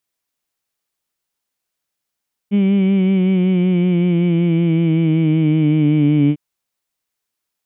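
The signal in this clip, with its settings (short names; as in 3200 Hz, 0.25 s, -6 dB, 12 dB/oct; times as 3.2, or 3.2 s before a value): formant-synthesis vowel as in heed, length 3.85 s, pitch 199 Hz, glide -5.5 st, vibrato depth 0.45 st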